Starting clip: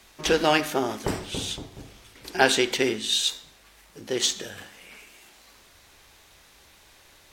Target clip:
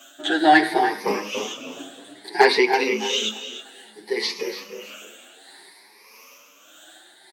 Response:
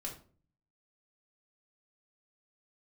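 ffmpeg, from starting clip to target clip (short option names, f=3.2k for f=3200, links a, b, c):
-filter_complex "[0:a]afftfilt=real='re*pow(10,19/40*sin(2*PI*(0.86*log(max(b,1)*sr/1024/100)/log(2)-(0.6)*(pts-256)/sr)))':imag='im*pow(10,19/40*sin(2*PI*(0.86*log(max(b,1)*sr/1024/100)/log(2)-(0.6)*(pts-256)/sr)))':win_size=1024:overlap=0.75,tremolo=f=1.6:d=0.53,acrossover=split=4200[a][b];[b]acompressor=threshold=-44dB:ratio=4:attack=1:release=60[c];[a][c]amix=inputs=2:normalize=0,asplit=2[d][e];[e]aecho=0:1:289:0.188[f];[d][f]amix=inputs=2:normalize=0,volume=6.5dB,asoftclip=hard,volume=-6.5dB,highpass=f=240:w=0.5412,highpass=f=240:w=1.3066,asplit=2[g][h];[h]adelay=317,lowpass=f=2.2k:p=1,volume=-8.5dB,asplit=2[i][j];[j]adelay=317,lowpass=f=2.2k:p=1,volume=0.28,asplit=2[k][l];[l]adelay=317,lowpass=f=2.2k:p=1,volume=0.28[m];[i][k][m]amix=inputs=3:normalize=0[n];[g][n]amix=inputs=2:normalize=0,asplit=2[o][p];[p]adelay=8.5,afreqshift=1.1[q];[o][q]amix=inputs=2:normalize=1,volume=6.5dB"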